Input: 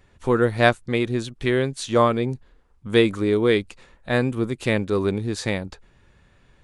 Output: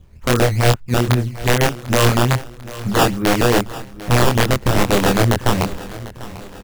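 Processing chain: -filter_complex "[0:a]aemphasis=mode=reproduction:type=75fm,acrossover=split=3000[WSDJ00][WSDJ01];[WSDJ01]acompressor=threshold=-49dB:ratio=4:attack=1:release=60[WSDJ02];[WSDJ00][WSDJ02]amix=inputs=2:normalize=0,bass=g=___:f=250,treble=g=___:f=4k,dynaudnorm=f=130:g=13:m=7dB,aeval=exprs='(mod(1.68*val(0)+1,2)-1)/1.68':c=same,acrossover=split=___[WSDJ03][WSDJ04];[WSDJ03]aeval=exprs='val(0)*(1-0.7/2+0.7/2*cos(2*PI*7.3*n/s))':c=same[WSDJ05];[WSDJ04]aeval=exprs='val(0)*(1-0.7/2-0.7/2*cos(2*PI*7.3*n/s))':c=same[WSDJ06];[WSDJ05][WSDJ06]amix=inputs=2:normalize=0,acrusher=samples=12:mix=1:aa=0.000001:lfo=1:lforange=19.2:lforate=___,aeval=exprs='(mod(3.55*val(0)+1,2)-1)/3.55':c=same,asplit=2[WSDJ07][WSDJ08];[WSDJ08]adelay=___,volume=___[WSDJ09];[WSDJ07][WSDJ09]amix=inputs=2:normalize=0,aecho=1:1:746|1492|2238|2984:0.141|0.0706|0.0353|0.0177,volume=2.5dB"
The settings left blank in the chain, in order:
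12, -9, 720, 2.4, 25, -2.5dB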